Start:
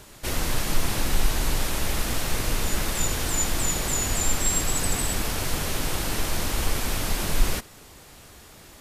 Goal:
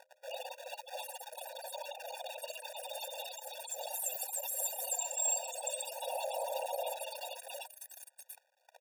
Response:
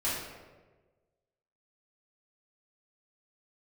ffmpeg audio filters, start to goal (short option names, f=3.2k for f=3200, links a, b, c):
-filter_complex "[0:a]alimiter=limit=-19dB:level=0:latency=1:release=10,asettb=1/sr,asplit=3[a][b][c];[a]atrim=end=3.184[d];[b]atrim=start=3.18:end=4.21,asetpts=PTS-STARTPTS,afade=t=in:d=0.004:c=qsin,afade=t=out:st=1.026:d=0.004:c=qsin,highshelf=f=9.6k:g=9[e];[c]atrim=start=4.206[f];[d][e]acrossfade=d=0.004:c1=hsin:c2=qsin[g];[g][f]acrossfade=d=0.004:c1=qsin:c2=hsin,asoftclip=type=tanh:threshold=-28.5dB,asettb=1/sr,asplit=3[h][i][j];[h]atrim=end=6.074[k];[i]atrim=start=6.07:end=6.91,asetpts=PTS-STARTPTS,afade=t=in:d=0.004:c=qsin,afade=t=out:st=0.836:d=0.004:c=qsin,equalizer=f=370:w=0.51:g=9[l];[j]atrim=start=6.906[m];[k][l]acrossfade=d=0.004:c1=hsin:c2=qsin[n];[n][m]acrossfade=d=0.004:c1=qsin:c2=hsin,acrossover=split=760|5500[o][p][q];[p]adelay=60[r];[q]adelay=750[s];[o][r][s]amix=inputs=3:normalize=0,afftfilt=real='re*gte(hypot(re,im),0.0178)':imag='im*gte(hypot(re,im),0.0178)':win_size=1024:overlap=0.75,asuperstop=centerf=1800:order=12:qfactor=1.2,acrusher=bits=9:dc=4:mix=0:aa=0.000001,bandreject=f=87.57:t=h:w=4,bandreject=f=175.14:t=h:w=4,bandreject=f=262.71:t=h:w=4,bandreject=f=350.28:t=h:w=4,bandreject=f=437.85:t=h:w=4,bandreject=f=525.42:t=h:w=4,bandreject=f=612.99:t=h:w=4,afftfilt=real='re*eq(mod(floor(b*sr/1024/480),2),1)':imag='im*eq(mod(floor(b*sr/1024/480),2),1)':win_size=1024:overlap=0.75,volume=5.5dB"